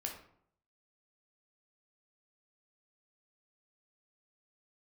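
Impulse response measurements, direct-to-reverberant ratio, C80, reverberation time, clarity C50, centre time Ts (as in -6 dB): 0.5 dB, 10.5 dB, 0.65 s, 6.5 dB, 24 ms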